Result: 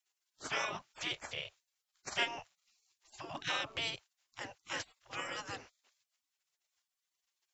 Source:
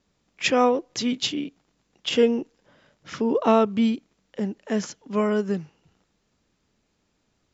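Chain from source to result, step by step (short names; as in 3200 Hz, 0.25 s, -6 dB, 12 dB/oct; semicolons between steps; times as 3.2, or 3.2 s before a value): spectral gate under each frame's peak -25 dB weak; Doppler distortion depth 0.11 ms; gain +3 dB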